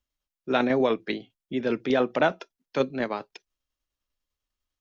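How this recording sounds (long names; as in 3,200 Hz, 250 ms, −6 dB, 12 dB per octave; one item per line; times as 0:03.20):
tremolo saw down 10 Hz, depth 45%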